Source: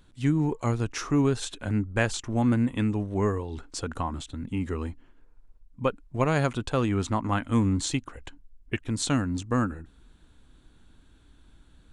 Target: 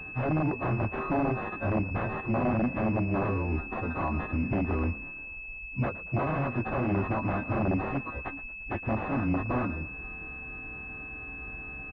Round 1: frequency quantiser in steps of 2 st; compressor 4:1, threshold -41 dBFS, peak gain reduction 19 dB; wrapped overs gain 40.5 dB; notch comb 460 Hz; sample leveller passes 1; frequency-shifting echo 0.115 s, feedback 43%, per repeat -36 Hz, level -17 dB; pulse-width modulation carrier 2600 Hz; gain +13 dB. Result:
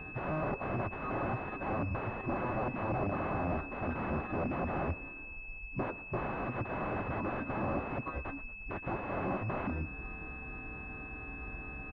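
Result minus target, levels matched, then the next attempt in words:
wrapped overs: distortion +18 dB
frequency quantiser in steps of 2 st; compressor 4:1, threshold -41 dBFS, peak gain reduction 19 dB; wrapped overs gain 34 dB; notch comb 460 Hz; sample leveller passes 1; frequency-shifting echo 0.115 s, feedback 43%, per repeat -36 Hz, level -17 dB; pulse-width modulation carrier 2600 Hz; gain +13 dB

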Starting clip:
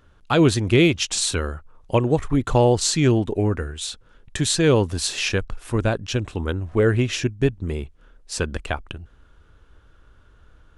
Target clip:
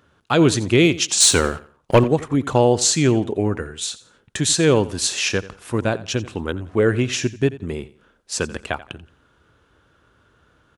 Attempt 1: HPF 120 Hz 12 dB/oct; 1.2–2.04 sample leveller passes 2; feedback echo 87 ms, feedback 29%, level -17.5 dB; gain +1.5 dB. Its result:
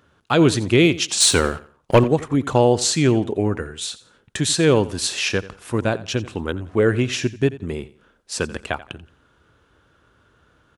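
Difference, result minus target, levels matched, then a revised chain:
8000 Hz band -2.5 dB
HPF 120 Hz 12 dB/oct; dynamic EQ 6700 Hz, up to +5 dB, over -38 dBFS, Q 2.3; 1.2–2.04 sample leveller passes 2; feedback echo 87 ms, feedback 29%, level -17.5 dB; gain +1.5 dB

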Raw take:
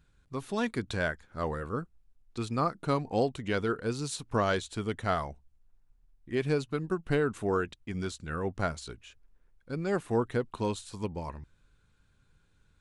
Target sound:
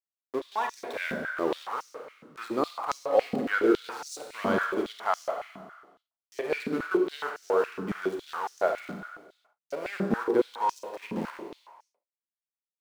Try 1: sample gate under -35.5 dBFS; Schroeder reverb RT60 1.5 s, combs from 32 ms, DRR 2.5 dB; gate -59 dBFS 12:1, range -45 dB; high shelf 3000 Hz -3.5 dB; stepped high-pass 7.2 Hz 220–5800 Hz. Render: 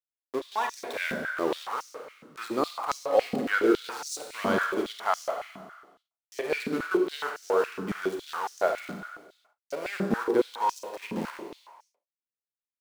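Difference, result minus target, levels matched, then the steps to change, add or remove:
8000 Hz band +5.0 dB
change: high shelf 3000 Hz -10 dB

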